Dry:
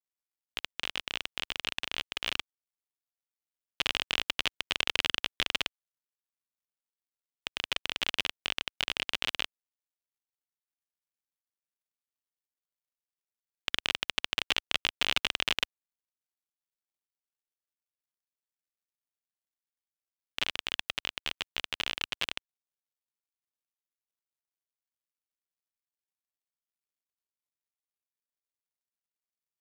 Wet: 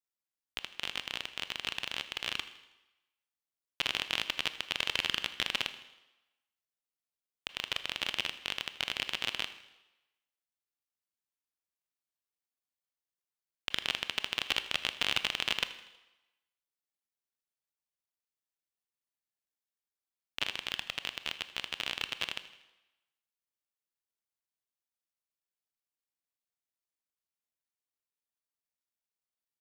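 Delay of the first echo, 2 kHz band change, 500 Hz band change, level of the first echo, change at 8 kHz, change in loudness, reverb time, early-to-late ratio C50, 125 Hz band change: 80 ms, -2.0 dB, -2.0 dB, -18.5 dB, -2.0 dB, -2.0 dB, 1.0 s, 12.5 dB, -2.5 dB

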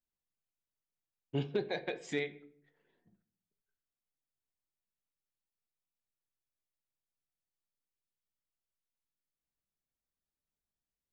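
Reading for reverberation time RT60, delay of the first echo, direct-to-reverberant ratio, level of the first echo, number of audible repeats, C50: 0.60 s, none, 8.5 dB, none, none, 16.0 dB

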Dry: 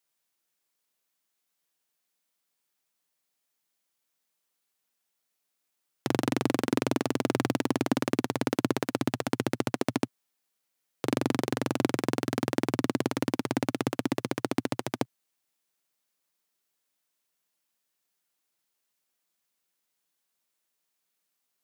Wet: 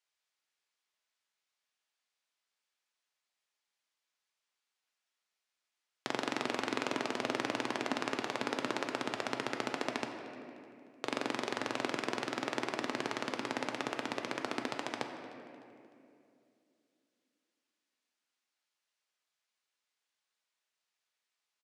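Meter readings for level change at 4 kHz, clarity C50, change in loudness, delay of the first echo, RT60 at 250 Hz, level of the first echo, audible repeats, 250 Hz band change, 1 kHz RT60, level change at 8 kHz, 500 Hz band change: -1.5 dB, 5.5 dB, -7.0 dB, 0.303 s, 3.2 s, -19.5 dB, 2, -11.5 dB, 2.3 s, -7.0 dB, -7.0 dB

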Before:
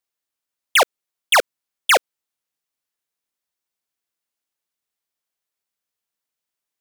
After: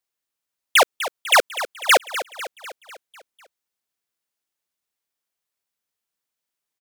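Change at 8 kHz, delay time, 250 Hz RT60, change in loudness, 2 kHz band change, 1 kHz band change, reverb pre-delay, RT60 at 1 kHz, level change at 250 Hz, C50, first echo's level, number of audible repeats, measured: +0.5 dB, 0.249 s, none, -1.0 dB, +0.5 dB, +0.5 dB, none, none, +0.5 dB, none, -12.5 dB, 5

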